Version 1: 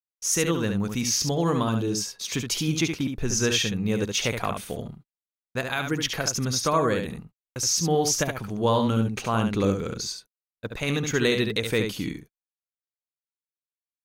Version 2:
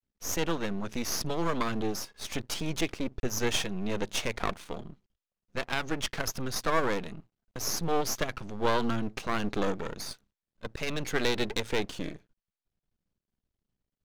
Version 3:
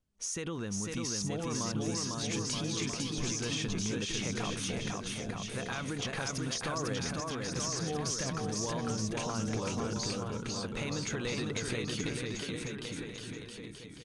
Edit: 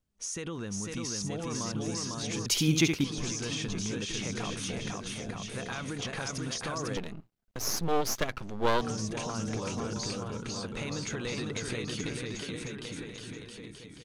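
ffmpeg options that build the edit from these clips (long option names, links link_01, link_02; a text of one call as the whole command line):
ffmpeg -i take0.wav -i take1.wav -i take2.wav -filter_complex "[2:a]asplit=3[link_01][link_02][link_03];[link_01]atrim=end=2.462[link_04];[0:a]atrim=start=2.458:end=3.042[link_05];[link_02]atrim=start=3.038:end=6.972[link_06];[1:a]atrim=start=6.968:end=8.812[link_07];[link_03]atrim=start=8.808[link_08];[link_04][link_05]acrossfade=duration=0.004:curve1=hsin:curve2=hsin[link_09];[link_09][link_06]acrossfade=duration=0.004:curve1=hsin:curve2=hsin[link_10];[link_10][link_07]acrossfade=duration=0.004:curve1=hsin:curve2=hsin[link_11];[link_11][link_08]acrossfade=duration=0.004:curve1=hsin:curve2=hsin" out.wav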